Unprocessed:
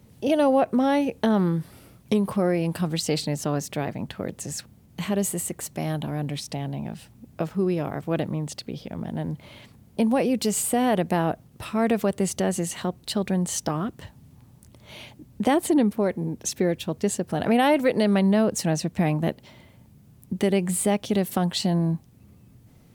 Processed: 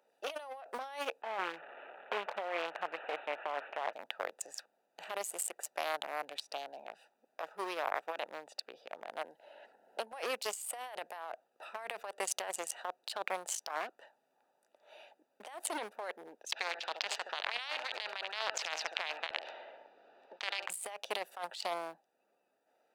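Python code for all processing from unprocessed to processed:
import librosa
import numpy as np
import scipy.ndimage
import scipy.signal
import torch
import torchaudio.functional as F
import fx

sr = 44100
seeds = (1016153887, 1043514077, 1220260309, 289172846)

y = fx.chain(x, sr, fx.delta_mod(bps=16000, step_db=-31.0),
    fx.peak_eq(hz=61.0, db=-13.5, octaves=0.95), at=(1.22, 3.93))
y = fx.chain(y, sr, fx.notch_comb(f0_hz=1200.0),
    fx.band_squash(depth_pct=70), at=(9.21, 10.13))
y = fx.chain(y, sr, fx.lowpass(hz=4100.0, slope=24),
    fx.echo_feedback(ms=70, feedback_pct=38, wet_db=-15.0),
    fx.spectral_comp(ratio=4.0), at=(16.52, 20.7))
y = fx.wiener(y, sr, points=41)
y = scipy.signal.sosfilt(scipy.signal.butter(4, 730.0, 'highpass', fs=sr, output='sos'), y)
y = fx.over_compress(y, sr, threshold_db=-40.0, ratio=-1.0)
y = F.gain(torch.from_numpy(y), 1.0).numpy()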